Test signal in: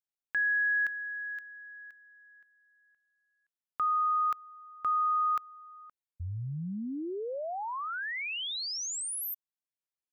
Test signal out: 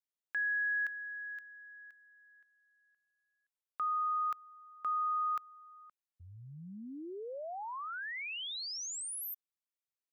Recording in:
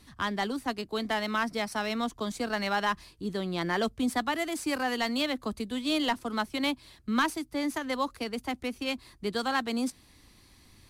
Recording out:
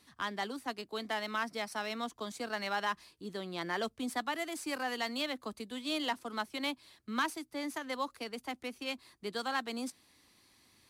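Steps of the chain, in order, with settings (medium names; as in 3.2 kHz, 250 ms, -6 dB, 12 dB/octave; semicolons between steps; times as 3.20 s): high-pass 330 Hz 6 dB/octave; trim -5 dB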